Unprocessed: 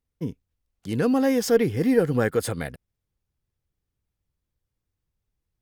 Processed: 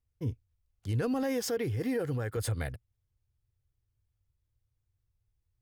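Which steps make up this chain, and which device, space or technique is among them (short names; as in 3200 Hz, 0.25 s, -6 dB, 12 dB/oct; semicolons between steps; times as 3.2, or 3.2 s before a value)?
car stereo with a boomy subwoofer (resonant low shelf 140 Hz +7 dB, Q 3; limiter -17.5 dBFS, peak gain reduction 9 dB); 1.23–2.37 HPF 150 Hz 6 dB/oct; gain -5.5 dB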